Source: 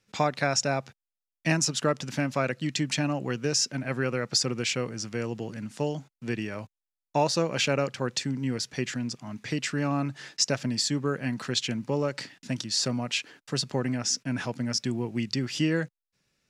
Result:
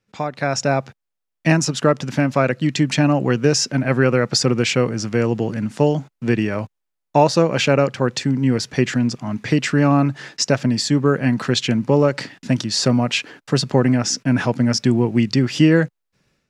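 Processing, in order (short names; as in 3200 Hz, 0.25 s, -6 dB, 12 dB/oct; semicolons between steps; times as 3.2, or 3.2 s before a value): high shelf 2500 Hz -9 dB; AGC gain up to 14 dB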